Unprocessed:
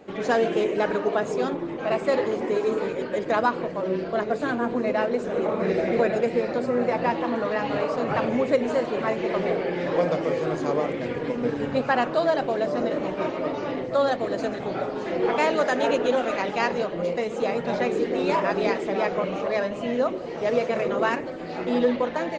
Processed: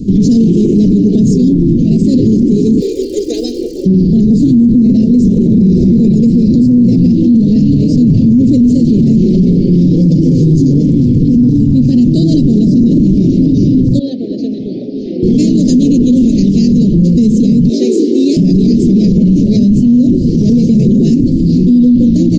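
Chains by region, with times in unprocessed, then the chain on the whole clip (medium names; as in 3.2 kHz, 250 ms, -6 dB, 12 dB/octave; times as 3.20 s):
2.80–3.84 s: high-pass 420 Hz 24 dB/octave + crackle 220 per s -44 dBFS + comb 2.5 ms
13.99–15.23 s: Chebyshev band-pass 610–6600 Hz + upward compressor, threshold -28 dBFS + distance through air 300 m
17.69–18.37 s: steep high-pass 310 Hz + doubling 18 ms -6 dB
whole clip: elliptic band-stop 250–5000 Hz, stop band 80 dB; tilt EQ -3 dB/octave; loudness maximiser +30 dB; trim -1 dB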